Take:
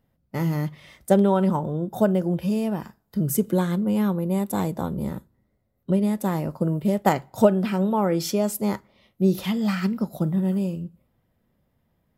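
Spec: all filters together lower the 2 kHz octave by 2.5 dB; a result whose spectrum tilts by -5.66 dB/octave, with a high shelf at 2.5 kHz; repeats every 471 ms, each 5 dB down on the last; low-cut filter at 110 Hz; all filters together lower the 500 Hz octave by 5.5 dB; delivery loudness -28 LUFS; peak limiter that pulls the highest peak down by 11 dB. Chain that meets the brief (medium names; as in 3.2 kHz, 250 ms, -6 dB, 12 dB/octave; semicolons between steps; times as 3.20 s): high-pass 110 Hz; peaking EQ 500 Hz -7.5 dB; peaking EQ 2 kHz -6.5 dB; treble shelf 2.5 kHz +8.5 dB; peak limiter -16.5 dBFS; feedback delay 471 ms, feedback 56%, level -5 dB; trim -2 dB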